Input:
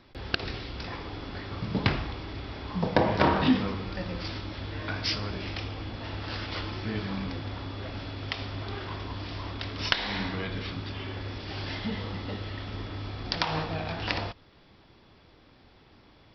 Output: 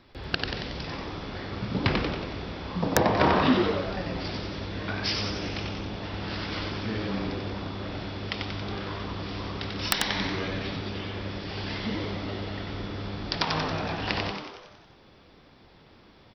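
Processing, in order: frequency-shifting echo 92 ms, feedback 57%, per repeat +100 Hz, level -4 dB; integer overflow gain 8 dB

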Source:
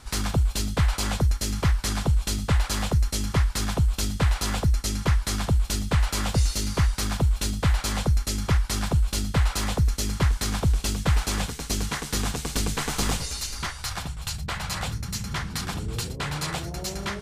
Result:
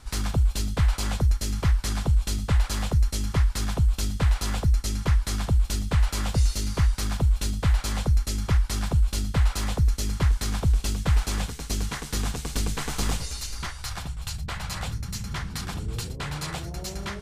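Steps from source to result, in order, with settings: bass shelf 76 Hz +7.5 dB; trim -3.5 dB

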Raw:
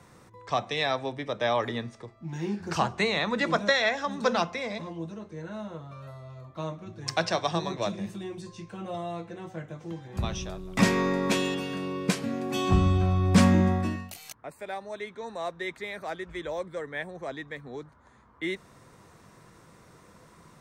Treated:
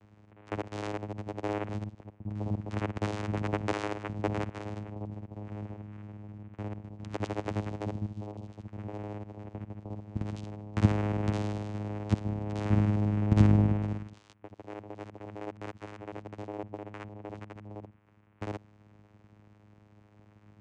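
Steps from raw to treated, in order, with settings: time reversed locally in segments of 51 ms; vocoder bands 4, saw 104 Hz; trim -2 dB

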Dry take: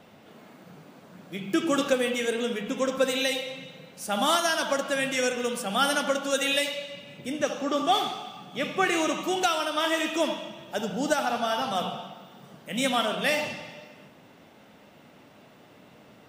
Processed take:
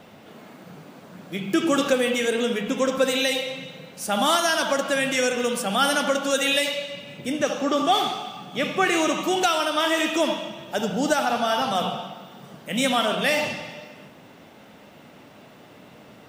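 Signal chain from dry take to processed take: in parallel at -1.5 dB: peak limiter -20 dBFS, peak gain reduction 8 dB; on the sum: bit crusher 12-bit

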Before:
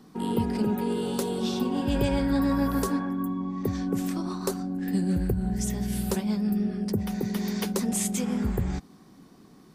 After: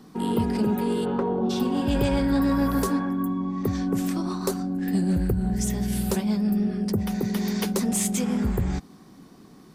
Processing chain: 1.04–1.49 s: resonant low-pass 1.7 kHz -> 710 Hz, resonance Q 1.7; saturation -17 dBFS, distortion -22 dB; trim +3.5 dB

